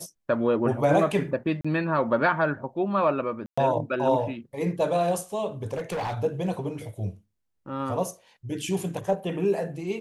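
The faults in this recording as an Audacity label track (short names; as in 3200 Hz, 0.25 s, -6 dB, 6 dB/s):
1.610000	1.650000	gap 35 ms
3.460000	3.580000	gap 0.115 s
5.730000	6.150000	clipped -26.5 dBFS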